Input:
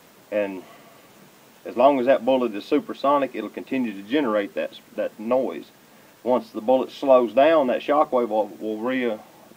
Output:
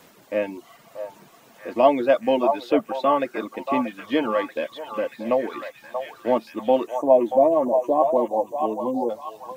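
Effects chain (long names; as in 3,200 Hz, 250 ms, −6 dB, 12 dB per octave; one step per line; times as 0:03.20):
reverb reduction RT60 0.66 s
time-frequency box erased 0:06.87–0:09.10, 1,100–5,700 Hz
echo through a band-pass that steps 633 ms, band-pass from 860 Hz, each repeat 0.7 octaves, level −3.5 dB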